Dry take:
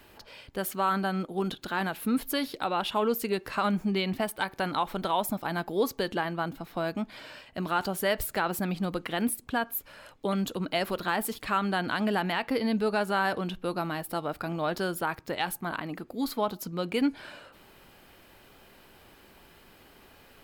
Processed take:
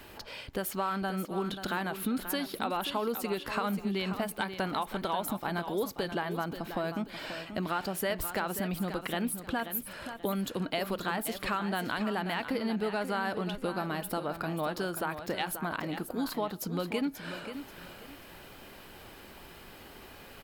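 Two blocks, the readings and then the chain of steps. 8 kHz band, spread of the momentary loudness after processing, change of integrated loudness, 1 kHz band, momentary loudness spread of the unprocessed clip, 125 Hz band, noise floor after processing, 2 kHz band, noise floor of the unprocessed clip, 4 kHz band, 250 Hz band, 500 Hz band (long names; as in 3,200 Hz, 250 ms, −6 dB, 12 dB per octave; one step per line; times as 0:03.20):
−1.5 dB, 16 LU, −3.5 dB, −4.0 dB, 7 LU, −2.0 dB, −50 dBFS, −3.0 dB, −56 dBFS, −2.5 dB, −3.0 dB, −3.5 dB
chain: downward compressor 3 to 1, threshold −37 dBFS, peak gain reduction 12 dB
on a send: repeating echo 534 ms, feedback 29%, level −10 dB
on the sum: level +5 dB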